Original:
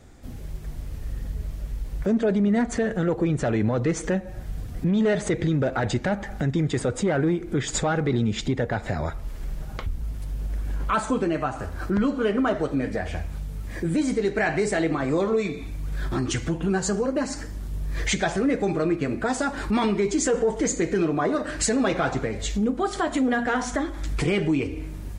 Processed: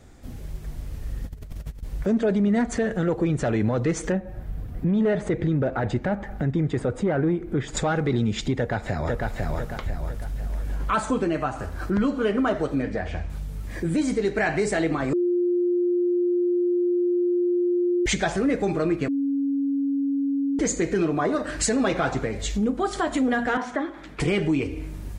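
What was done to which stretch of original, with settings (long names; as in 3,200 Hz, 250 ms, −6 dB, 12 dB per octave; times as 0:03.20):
0:01.24–0:01.83: compressor whose output falls as the input rises −34 dBFS, ratio −0.5
0:04.12–0:07.77: parametric band 6,900 Hz −12.5 dB 2.4 octaves
0:08.55–0:09.28: delay throw 500 ms, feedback 45%, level −2 dB
0:12.82–0:13.30: high-frequency loss of the air 83 metres
0:15.13–0:18.06: beep over 353 Hz −19 dBFS
0:19.08–0:20.59: beep over 278 Hz −21 dBFS
0:23.57–0:24.20: three-way crossover with the lows and the highs turned down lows −22 dB, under 190 Hz, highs −17 dB, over 3,500 Hz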